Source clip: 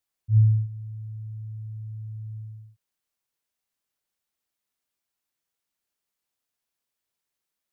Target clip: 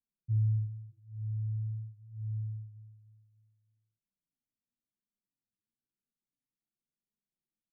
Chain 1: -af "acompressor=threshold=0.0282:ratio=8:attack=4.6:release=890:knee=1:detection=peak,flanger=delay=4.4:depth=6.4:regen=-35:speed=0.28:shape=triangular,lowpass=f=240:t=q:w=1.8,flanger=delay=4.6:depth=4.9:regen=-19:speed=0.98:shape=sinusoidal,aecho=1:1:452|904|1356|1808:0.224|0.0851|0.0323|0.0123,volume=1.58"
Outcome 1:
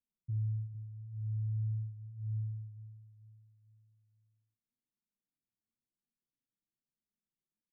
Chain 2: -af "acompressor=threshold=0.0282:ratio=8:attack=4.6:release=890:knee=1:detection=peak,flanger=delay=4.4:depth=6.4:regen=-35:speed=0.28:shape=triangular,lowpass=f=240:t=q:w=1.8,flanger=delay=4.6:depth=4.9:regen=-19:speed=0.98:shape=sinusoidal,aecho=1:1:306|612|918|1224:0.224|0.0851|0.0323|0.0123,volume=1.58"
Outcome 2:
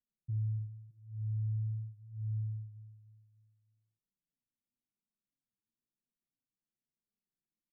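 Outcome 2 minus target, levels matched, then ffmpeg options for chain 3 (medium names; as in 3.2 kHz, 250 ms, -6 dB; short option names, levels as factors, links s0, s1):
compression: peak gain reduction +6 dB
-af "acompressor=threshold=0.0631:ratio=8:attack=4.6:release=890:knee=1:detection=peak,flanger=delay=4.4:depth=6.4:regen=-35:speed=0.28:shape=triangular,lowpass=f=240:t=q:w=1.8,flanger=delay=4.6:depth=4.9:regen=-19:speed=0.98:shape=sinusoidal,aecho=1:1:306|612|918|1224:0.224|0.0851|0.0323|0.0123,volume=1.58"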